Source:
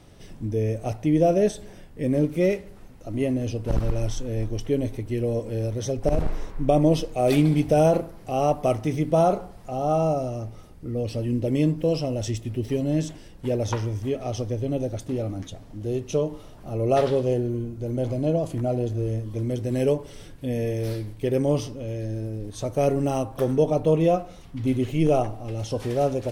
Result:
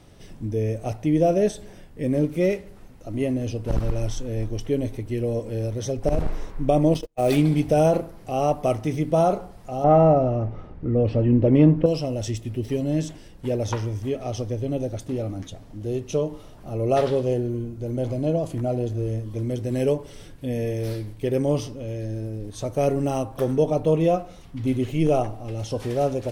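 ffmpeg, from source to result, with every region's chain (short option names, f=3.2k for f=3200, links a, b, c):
-filter_complex "[0:a]asettb=1/sr,asplit=3[a][b][c];[a]atrim=end=6.944[d];[b]atrim=start=6.94:end=7.37,asetpts=PTS-STARTPTS,afade=t=in:d=0.004:c=qsin,afade=t=out:st=0.426:d=0.004:c=qsin,agate=range=-37dB:threshold=-27dB:ratio=16:release=100:detection=peak,acrusher=bits=7:mode=log:mix=0:aa=0.000001[e];[c]atrim=start=7.366[f];[d][e]acrossfade=d=0.004:c1=hsin:c2=qsin[g];[g][f]acrossfade=d=0.004:c1=qsin:c2=hsin,asettb=1/sr,asplit=3[h][i][j];[h]atrim=end=9.844[k];[i]atrim=start=9.84:end=11.86,asetpts=PTS-STARTPTS,afade=t=in:d=0.004:c=qsin,afade=t=out:st=2.016:d=0.004:c=qsin,lowpass=1.9k,acontrast=85[l];[j]atrim=start=11.856[m];[k][l]acrossfade=d=0.004:c1=hsin:c2=qsin[n];[n][m]acrossfade=d=0.004:c1=qsin:c2=hsin"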